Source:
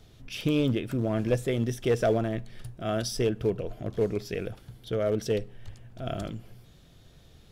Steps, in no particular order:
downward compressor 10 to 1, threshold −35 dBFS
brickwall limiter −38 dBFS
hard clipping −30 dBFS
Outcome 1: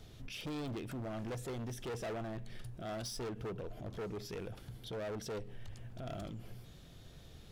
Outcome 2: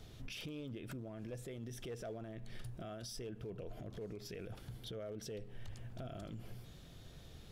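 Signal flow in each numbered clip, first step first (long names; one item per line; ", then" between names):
hard clipping, then downward compressor, then brickwall limiter
downward compressor, then brickwall limiter, then hard clipping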